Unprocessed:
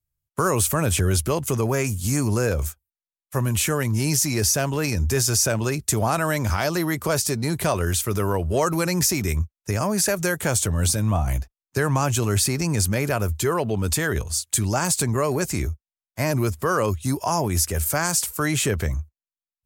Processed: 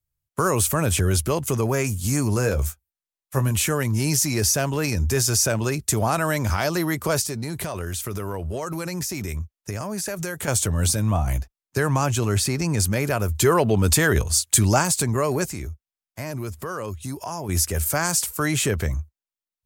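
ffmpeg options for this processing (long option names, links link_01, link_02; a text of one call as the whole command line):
ffmpeg -i in.wav -filter_complex "[0:a]asettb=1/sr,asplit=3[link_01][link_02][link_03];[link_01]atrim=end=2.354[link_04];[link_02]atrim=start=2.35:end=3.51,asetpts=PTS-STARTPTS,afade=type=in:duration=0.004:curve=qsin,afade=type=out:start_time=1.156:duration=0.004:curve=qsin,asplit=2[link_05][link_06];[link_06]adelay=15,volume=-9dB[link_07];[link_05][link_07]amix=inputs=2:normalize=0,atrim=end_sample=51156[link_08];[link_03]atrim=start=3.506[link_09];[link_04][link_08]acrossfade=duration=0.004:curve1=hsin:curve2=qsin[link_10];[link_10][link_09]acrossfade=duration=0.004:curve1=qsin:curve2=hsin,asettb=1/sr,asplit=3[link_11][link_12][link_13];[link_11]atrim=end=7.234[link_14];[link_12]atrim=start=7.23:end=10.48,asetpts=PTS-STARTPTS,afade=type=in:duration=0.004:curve=qsin,afade=type=out:start_time=3.246:duration=0.004:curve=qsin,acompressor=threshold=-25dB:ratio=6:attack=3.2:release=140:knee=1:detection=peak[link_15];[link_13]atrim=start=10.476[link_16];[link_14][link_15]acrossfade=duration=0.004:curve1=hsin:curve2=qsin[link_17];[link_17][link_16]acrossfade=duration=0.004:curve1=qsin:curve2=hsin,asettb=1/sr,asplit=3[link_18][link_19][link_20];[link_18]atrim=end=12.064[link_21];[link_19]atrim=start=12.06:end=12.8,asetpts=PTS-STARTPTS,afade=type=in:duration=0.004:curve=qsin,afade=type=out:start_time=0.736:duration=0.004:curve=qsin,highshelf=frequency=7900:gain=-6[link_22];[link_20]atrim=start=12.796[link_23];[link_21][link_22]acrossfade=duration=0.004:curve1=hsin:curve2=qsin[link_24];[link_24][link_23]acrossfade=duration=0.004:curve1=qsin:curve2=hsin,asplit=3[link_25][link_26][link_27];[link_25]afade=type=out:start_time=13.34:duration=0.02[link_28];[link_26]acontrast=23,afade=type=in:start_time=13.34:duration=0.02,afade=type=out:start_time=14.81:duration=0.02[link_29];[link_27]afade=type=in:start_time=14.81:duration=0.02[link_30];[link_28][link_29][link_30]amix=inputs=3:normalize=0,asettb=1/sr,asplit=3[link_31][link_32][link_33];[link_31]atrim=end=15.454[link_34];[link_32]atrim=start=15.45:end=17.49,asetpts=PTS-STARTPTS,afade=type=in:duration=0.004:curve=qsin,afade=type=out:start_time=2.036:duration=0.004:curve=qsin,acompressor=threshold=-33dB:ratio=2:attack=3.2:release=140:knee=1:detection=peak[link_35];[link_33]atrim=start=17.486[link_36];[link_34][link_35]acrossfade=duration=0.004:curve1=hsin:curve2=qsin[link_37];[link_37][link_36]acrossfade=duration=0.004:curve1=qsin:curve2=hsin" out.wav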